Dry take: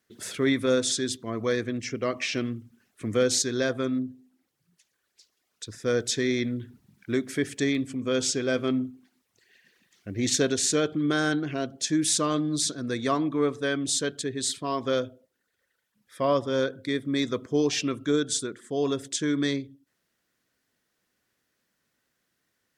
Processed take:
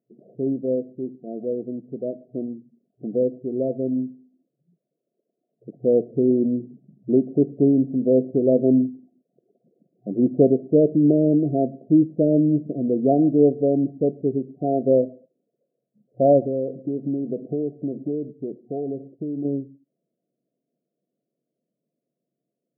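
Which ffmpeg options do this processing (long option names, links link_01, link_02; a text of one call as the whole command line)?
ffmpeg -i in.wav -filter_complex "[0:a]asettb=1/sr,asplit=3[link_01][link_02][link_03];[link_01]atrim=end=16.404[link_04];[link_02]atrim=start=16.4:end=19.45,asetpts=PTS-STARTPTS,afade=type=in:duration=0.004:curve=qsin,afade=type=out:start_time=3.046:duration=0.004:curve=qsin,acompressor=threshold=-29dB:ratio=5:attack=3.2:release=140:knee=1:detection=peak[link_05];[link_03]atrim=start=19.446[link_06];[link_04][link_05]acrossfade=duration=0.004:curve1=hsin:curve2=qsin[link_07];[link_07][link_06]acrossfade=duration=0.004:curve1=qsin:curve2=hsin,dynaudnorm=framelen=320:gausssize=31:maxgain=11.5dB,afftfilt=real='re*between(b*sr/4096,120,730)':imag='im*between(b*sr/4096,120,730)':win_size=4096:overlap=0.75" out.wav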